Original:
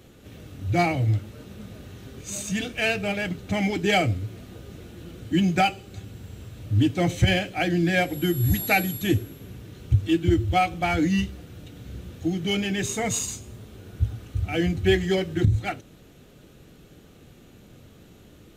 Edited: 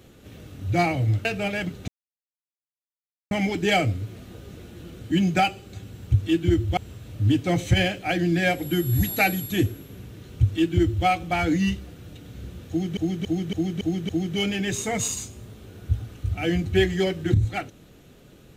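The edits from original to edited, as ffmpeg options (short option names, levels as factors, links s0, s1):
-filter_complex "[0:a]asplit=10[s0][s1][s2][s3][s4][s5][s6][s7][s8][s9];[s0]atrim=end=1.252[s10];[s1]atrim=start=2.888:end=3.52,asetpts=PTS-STARTPTS,afade=t=out:st=0.628:d=0.004:c=hsin,apad=pad_dur=1.43[s11];[s2]atrim=start=3.52:end=6.282,asetpts=PTS-STARTPTS,afade=t=in:d=0.004:c=hsin[s12];[s3]atrim=start=9.868:end=10.572[s13];[s4]atrim=start=6.278:end=12.482[s14];[s5]atrim=start=12.198:end=12.482[s15];[s6]atrim=start=12.198:end=12.482[s16];[s7]atrim=start=12.198:end=12.482[s17];[s8]atrim=start=12.198:end=12.482[s18];[s9]atrim=start=12.198[s19];[s11][s12]concat=n=2:v=0:a=1[s20];[s10][s20]acrossfade=d=0.004:c1=hsin:c2=hsin[s21];[s21][s13]acrossfade=d=0.004:c1=hsin:c2=hsin[s22];[s22][s14]acrossfade=d=0.004:c1=hsin:c2=hsin[s23];[s23][s15]acrossfade=d=0.004:c1=hsin:c2=hsin[s24];[s24][s16]acrossfade=d=0.004:c1=hsin:c2=hsin[s25];[s25][s17]acrossfade=d=0.004:c1=hsin:c2=hsin[s26];[s26][s18]acrossfade=d=0.004:c1=hsin:c2=hsin[s27];[s27][s19]acrossfade=d=0.004:c1=hsin:c2=hsin"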